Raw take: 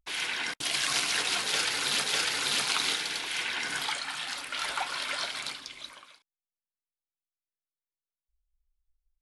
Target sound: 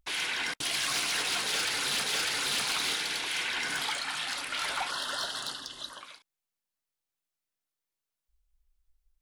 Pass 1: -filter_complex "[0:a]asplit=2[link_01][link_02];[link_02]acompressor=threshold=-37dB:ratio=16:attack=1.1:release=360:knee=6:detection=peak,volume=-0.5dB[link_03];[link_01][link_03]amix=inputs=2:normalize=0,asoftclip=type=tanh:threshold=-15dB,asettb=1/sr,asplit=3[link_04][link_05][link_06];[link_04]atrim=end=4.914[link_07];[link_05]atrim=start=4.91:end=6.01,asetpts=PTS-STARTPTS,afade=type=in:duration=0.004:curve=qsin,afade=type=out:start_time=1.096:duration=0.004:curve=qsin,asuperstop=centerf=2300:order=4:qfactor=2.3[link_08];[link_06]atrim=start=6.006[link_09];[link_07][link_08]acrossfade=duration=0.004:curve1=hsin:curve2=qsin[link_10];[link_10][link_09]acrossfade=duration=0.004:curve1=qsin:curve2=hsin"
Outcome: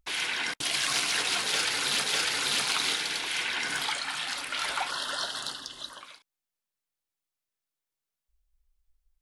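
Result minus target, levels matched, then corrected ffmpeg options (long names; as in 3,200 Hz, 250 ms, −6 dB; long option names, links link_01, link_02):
soft clipping: distortion −12 dB
-filter_complex "[0:a]asplit=2[link_01][link_02];[link_02]acompressor=threshold=-37dB:ratio=16:attack=1.1:release=360:knee=6:detection=peak,volume=-0.5dB[link_03];[link_01][link_03]amix=inputs=2:normalize=0,asoftclip=type=tanh:threshold=-24.5dB,asettb=1/sr,asplit=3[link_04][link_05][link_06];[link_04]atrim=end=4.914[link_07];[link_05]atrim=start=4.91:end=6.01,asetpts=PTS-STARTPTS,afade=type=in:duration=0.004:curve=qsin,afade=type=out:start_time=1.096:duration=0.004:curve=qsin,asuperstop=centerf=2300:order=4:qfactor=2.3[link_08];[link_06]atrim=start=6.006[link_09];[link_07][link_08]acrossfade=duration=0.004:curve1=hsin:curve2=qsin[link_10];[link_10][link_09]acrossfade=duration=0.004:curve1=qsin:curve2=hsin"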